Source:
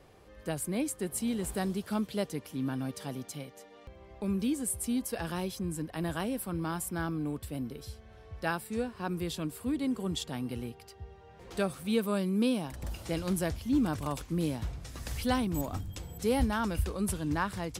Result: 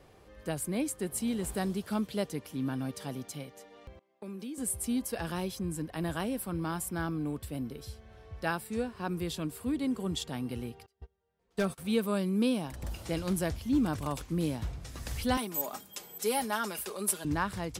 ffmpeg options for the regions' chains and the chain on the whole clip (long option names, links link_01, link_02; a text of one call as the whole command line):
ffmpeg -i in.wav -filter_complex "[0:a]asettb=1/sr,asplit=3[link_01][link_02][link_03];[link_01]atrim=end=3.994[link_04];[link_02]atrim=start=3.99:end=4.58,asetpts=PTS-STARTPTS,afade=type=in:duration=0.004:curve=qsin,afade=type=out:start_time=0.586:duration=0.004:curve=qsin,highpass=frequency=210:width=0.5412,highpass=frequency=210:width=1.3066,agate=range=-19dB:threshold=-42dB:ratio=16:release=100:detection=peak,acompressor=threshold=-40dB:ratio=3:attack=3.2:release=140:knee=1:detection=peak[link_05];[link_03]atrim=start=4.576[link_06];[link_04][link_05]acrossfade=duration=0.004:curve1=hsin:curve2=qsin[link_07];[link_07][link_06]acrossfade=duration=0.004:curve1=qsin:curve2=hsin,asettb=1/sr,asplit=3[link_08][link_09][link_10];[link_08]atrim=end=10.864[link_11];[link_09]atrim=start=10.86:end=11.78,asetpts=PTS-STARTPTS,afade=type=in:duration=0.004:curve=qsin,afade=type=out:start_time=0.916:duration=0.004:curve=qsin,agate=range=-27dB:threshold=-42dB:ratio=16:release=100:detection=peak,aecho=1:1:4.5:0.4,atrim=end_sample=40572,aeval=exprs='0.106*(abs(mod(val(0)/0.106+3,4)-2)-1)':channel_layout=same[link_12];[link_10]atrim=start=11.776[link_13];[link_11][link_12]acrossfade=duration=0.004:curve1=hsin:curve2=qsin[link_14];[link_14][link_13]acrossfade=duration=0.004:curve1=qsin:curve2=hsin,asettb=1/sr,asplit=3[link_15][link_16][link_17];[link_15]atrim=end=15.374[link_18];[link_16]atrim=start=15.37:end=17.25,asetpts=PTS-STARTPTS,afade=type=in:duration=0.004:curve=qsin,afade=type=out:start_time=1.876:duration=0.004:curve=qsin,highpass=410,highshelf=frequency=8300:gain=11,aecho=1:1:4.9:0.59,atrim=end_sample=82908[link_19];[link_17]atrim=start=17.246[link_20];[link_18][link_19]acrossfade=duration=0.004:curve1=hsin:curve2=qsin[link_21];[link_21][link_20]acrossfade=duration=0.004:curve1=qsin:curve2=hsin" out.wav